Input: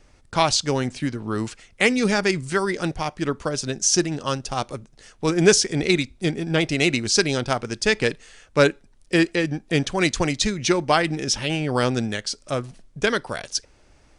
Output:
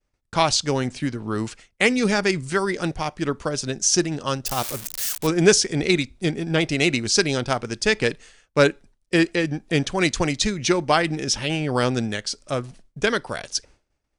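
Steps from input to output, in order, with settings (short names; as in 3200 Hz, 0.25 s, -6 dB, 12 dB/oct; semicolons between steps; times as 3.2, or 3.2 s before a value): 4.46–5.27 switching spikes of -18 dBFS; expander -40 dBFS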